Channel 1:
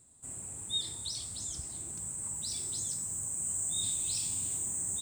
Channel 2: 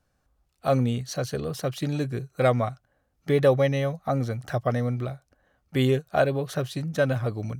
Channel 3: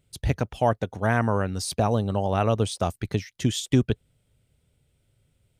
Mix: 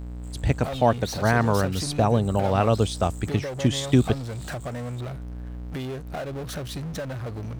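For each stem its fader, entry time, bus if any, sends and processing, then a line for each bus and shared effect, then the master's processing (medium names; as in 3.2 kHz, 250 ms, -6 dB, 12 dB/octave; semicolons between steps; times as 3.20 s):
-16.5 dB, 0.00 s, bus A, no send, resonant low-pass 4.2 kHz, resonance Q 2.7
-16.5 dB, 0.00 s, bus A, no send, level rider gain up to 11.5 dB; hum 60 Hz, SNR 15 dB
+2.0 dB, 0.20 s, no bus, no send, treble shelf 8.9 kHz -8.5 dB
bus A: 0.0 dB, power-law waveshaper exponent 0.5; compression, threshold -30 dBFS, peak gain reduction 8.5 dB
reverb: none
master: none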